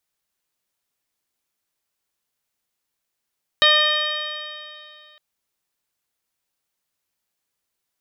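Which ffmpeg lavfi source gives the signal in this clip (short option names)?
-f lavfi -i "aevalsrc='0.0891*pow(10,-3*t/2.43)*sin(2*PI*602.69*t)+0.0944*pow(10,-3*t/2.43)*sin(2*PI*1209.53*t)+0.141*pow(10,-3*t/2.43)*sin(2*PI*1824.6*t)+0.0531*pow(10,-3*t/2.43)*sin(2*PI*2451.91*t)+0.168*pow(10,-3*t/2.43)*sin(2*PI*3095.33*t)+0.178*pow(10,-3*t/2.43)*sin(2*PI*3758.56*t)+0.0299*pow(10,-3*t/2.43)*sin(2*PI*4445.12*t)+0.0178*pow(10,-3*t/2.43)*sin(2*PI*5158.29*t)':d=1.56:s=44100"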